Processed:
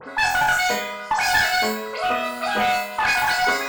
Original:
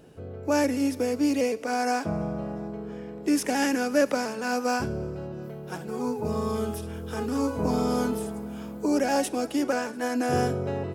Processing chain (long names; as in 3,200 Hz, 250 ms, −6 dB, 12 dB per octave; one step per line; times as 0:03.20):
every frequency bin delayed by itself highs late, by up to 564 ms
parametric band 9,000 Hz −8.5 dB 1.3 octaves
reversed playback
upward compression, threshold −36 dBFS
reversed playback
change of speed 2.97×
on a send: flutter between parallel walls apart 4 metres, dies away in 0.49 s
on the sum: asymmetric clip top −24.5 dBFS
level +6.5 dB